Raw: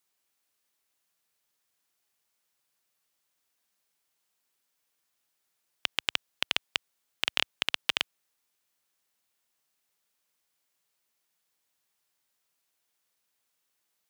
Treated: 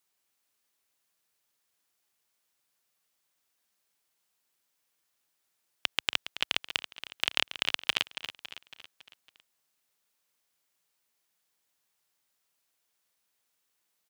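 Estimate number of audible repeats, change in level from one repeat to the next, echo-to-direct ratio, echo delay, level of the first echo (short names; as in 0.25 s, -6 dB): 5, -5.5 dB, -10.5 dB, 0.278 s, -12.0 dB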